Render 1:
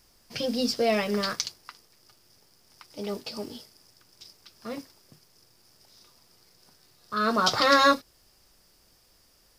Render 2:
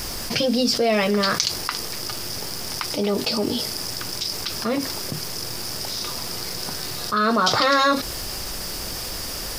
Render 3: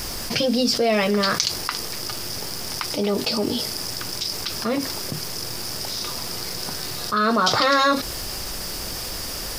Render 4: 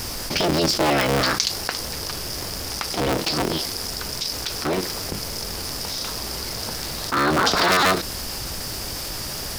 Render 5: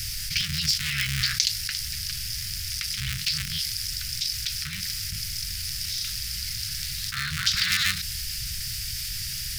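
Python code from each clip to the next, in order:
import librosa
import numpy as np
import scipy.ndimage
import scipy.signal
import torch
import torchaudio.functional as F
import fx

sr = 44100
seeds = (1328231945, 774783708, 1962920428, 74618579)

y1 = fx.env_flatten(x, sr, amount_pct=70)
y2 = y1
y3 = fx.cycle_switch(y2, sr, every=3, mode='inverted')
y4 = scipy.signal.sosfilt(scipy.signal.cheby2(4, 60, [320.0, 810.0], 'bandstop', fs=sr, output='sos'), y3)
y4 = y4 * librosa.db_to_amplitude(-1.0)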